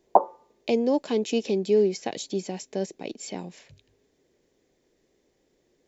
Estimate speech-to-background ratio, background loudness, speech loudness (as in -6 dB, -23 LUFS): -2.0 dB, -25.5 LUFS, -27.5 LUFS